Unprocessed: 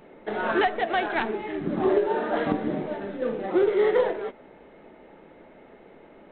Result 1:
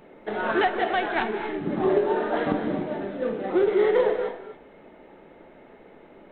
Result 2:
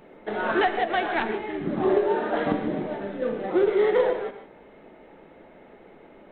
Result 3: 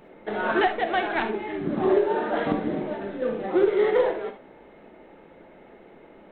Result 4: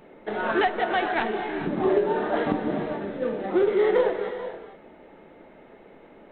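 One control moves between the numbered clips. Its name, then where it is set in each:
non-linear reverb, gate: 290, 170, 90, 480 ms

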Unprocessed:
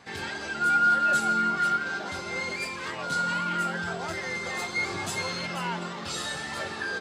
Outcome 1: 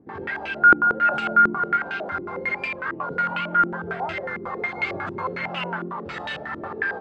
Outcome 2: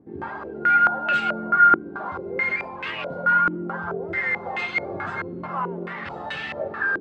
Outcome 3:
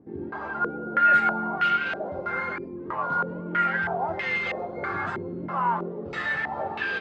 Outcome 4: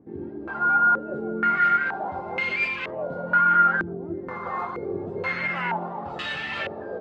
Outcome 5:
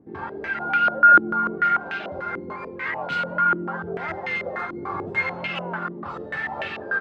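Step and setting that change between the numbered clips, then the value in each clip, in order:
stepped low-pass, rate: 11, 4.6, 3.1, 2.1, 6.8 Hz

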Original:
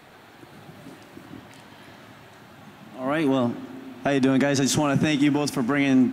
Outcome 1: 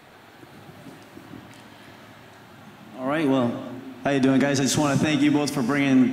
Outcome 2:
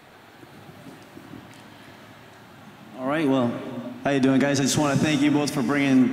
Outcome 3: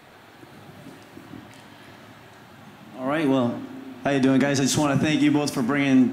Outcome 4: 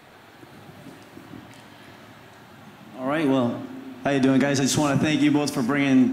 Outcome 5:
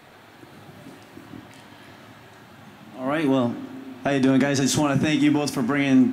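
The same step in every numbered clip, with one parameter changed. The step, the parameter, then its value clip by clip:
non-linear reverb, gate: 320, 500, 130, 190, 80 ms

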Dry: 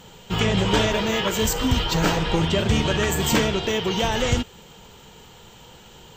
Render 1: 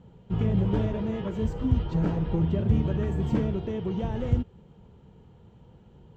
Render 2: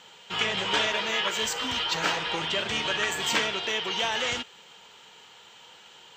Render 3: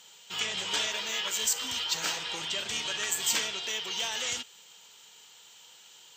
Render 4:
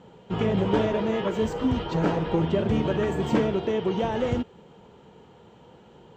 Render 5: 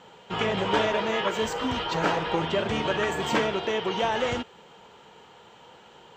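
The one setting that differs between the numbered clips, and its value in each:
band-pass, frequency: 100, 2400, 7300, 340, 910 Hz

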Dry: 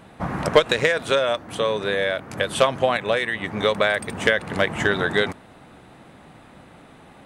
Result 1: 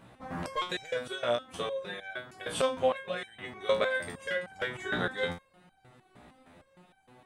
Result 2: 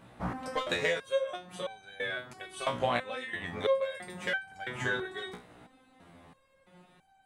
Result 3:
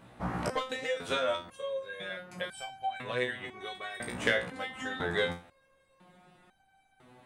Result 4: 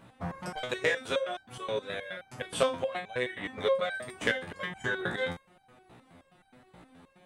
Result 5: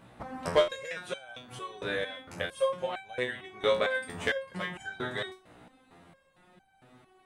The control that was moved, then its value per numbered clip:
stepped resonator, rate: 6.5, 3, 2, 9.5, 4.4 Hz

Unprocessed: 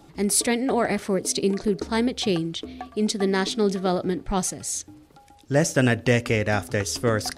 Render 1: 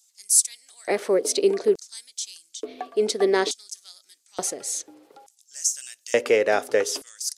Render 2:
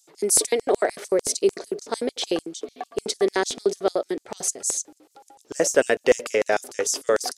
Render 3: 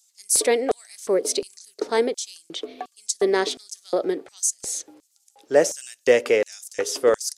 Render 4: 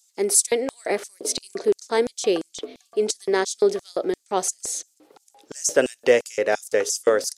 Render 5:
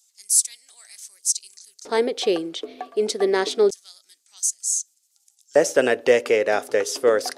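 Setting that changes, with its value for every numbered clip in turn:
LFO high-pass, rate: 0.57, 6.7, 1.4, 2.9, 0.27 Hz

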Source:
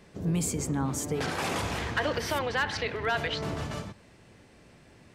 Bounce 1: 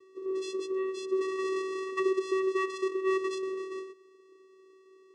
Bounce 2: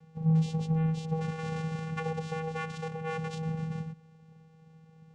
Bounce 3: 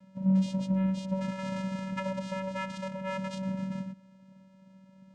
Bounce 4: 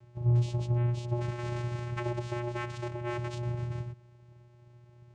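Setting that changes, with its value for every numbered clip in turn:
vocoder, frequency: 380, 160, 190, 120 Hz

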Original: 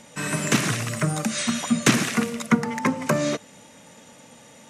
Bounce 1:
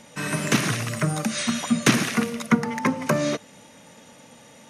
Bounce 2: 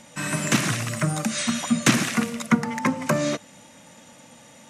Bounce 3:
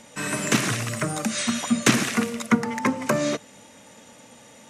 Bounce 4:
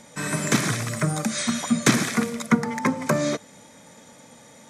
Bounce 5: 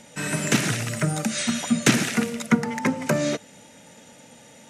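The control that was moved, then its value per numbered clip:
notch, frequency: 7600, 430, 160, 2800, 1100 Hz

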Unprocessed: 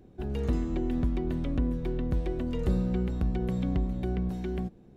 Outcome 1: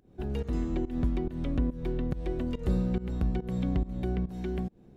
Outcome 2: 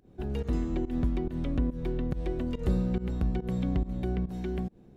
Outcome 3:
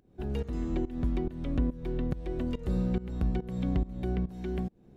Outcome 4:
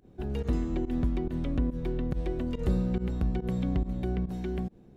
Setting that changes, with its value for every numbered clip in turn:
pump, release: 214, 146, 362, 96 ms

